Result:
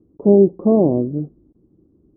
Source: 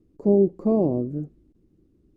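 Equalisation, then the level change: high-pass 90 Hz 6 dB/octave; low-pass 1.1 kHz 24 dB/octave; +7.0 dB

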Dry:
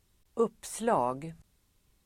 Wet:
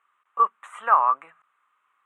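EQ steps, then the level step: resonant high-pass 1.2 kHz, resonance Q 7.7; Butterworth band-stop 4.9 kHz, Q 0.88; distance through air 140 m; +5.5 dB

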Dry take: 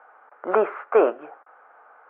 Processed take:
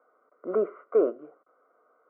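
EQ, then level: boxcar filter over 52 samples; 0.0 dB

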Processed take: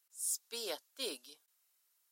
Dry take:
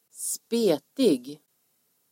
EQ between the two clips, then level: high-pass 1.1 kHz 12 dB/octave; -5.5 dB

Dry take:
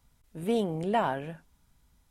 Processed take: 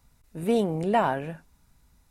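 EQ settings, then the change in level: band-stop 3.2 kHz, Q 8.5; +4.0 dB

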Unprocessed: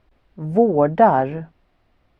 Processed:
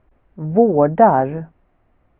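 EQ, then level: Bessel low-pass 1.7 kHz, order 4; +2.5 dB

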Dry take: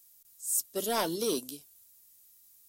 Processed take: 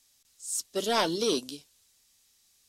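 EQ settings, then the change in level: low-pass 4.4 kHz 12 dB/octave; treble shelf 2.7 kHz +8.5 dB; +3.0 dB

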